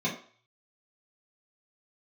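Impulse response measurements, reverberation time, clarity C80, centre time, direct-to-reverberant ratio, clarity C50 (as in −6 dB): 0.45 s, 12.5 dB, 23 ms, −7.5 dB, 8.5 dB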